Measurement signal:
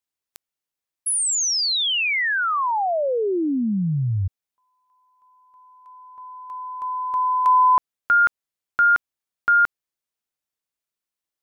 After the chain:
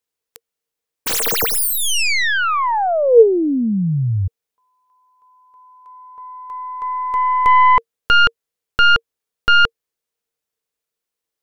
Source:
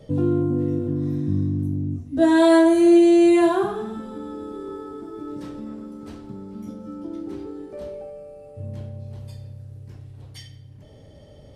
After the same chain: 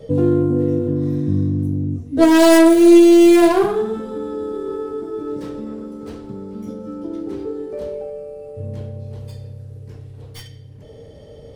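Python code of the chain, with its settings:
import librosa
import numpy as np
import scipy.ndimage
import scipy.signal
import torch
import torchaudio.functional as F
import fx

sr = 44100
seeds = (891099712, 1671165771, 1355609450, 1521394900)

y = fx.tracing_dist(x, sr, depth_ms=0.25)
y = fx.peak_eq(y, sr, hz=460.0, db=14.0, octaves=0.21)
y = F.gain(torch.from_numpy(y), 4.0).numpy()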